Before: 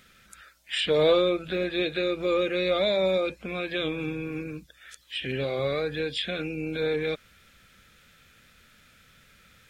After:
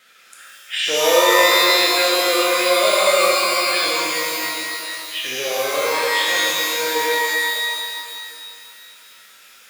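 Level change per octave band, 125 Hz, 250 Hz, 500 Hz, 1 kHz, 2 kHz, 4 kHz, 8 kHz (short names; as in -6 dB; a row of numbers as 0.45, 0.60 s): under -10 dB, +0.5 dB, +6.0 dB, +17.5 dB, +15.5 dB, +14.0 dB, n/a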